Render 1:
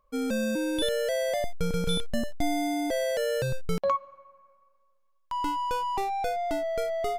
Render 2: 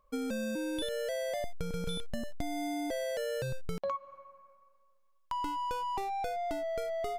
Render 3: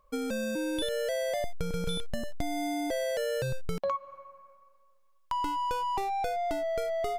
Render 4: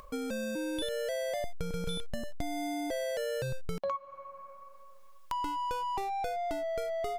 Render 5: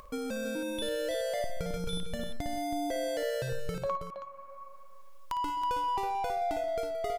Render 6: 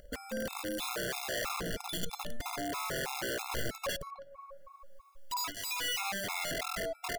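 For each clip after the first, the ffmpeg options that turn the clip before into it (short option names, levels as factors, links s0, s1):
-af "acompressor=threshold=0.0251:ratio=6"
-af "equalizer=f=240:t=o:w=0.38:g=-4,volume=1.58"
-af "acompressor=mode=upward:threshold=0.02:ratio=2.5,volume=0.708"
-af "aecho=1:1:56|130|173|323:0.282|0.178|0.178|0.355"
-af "aeval=exprs='(mod(25.1*val(0)+1,2)-1)/25.1':c=same,afftfilt=real='re*gt(sin(2*PI*3.1*pts/sr)*(1-2*mod(floor(b*sr/1024/690),2)),0)':imag='im*gt(sin(2*PI*3.1*pts/sr)*(1-2*mod(floor(b*sr/1024/690),2)),0)':win_size=1024:overlap=0.75"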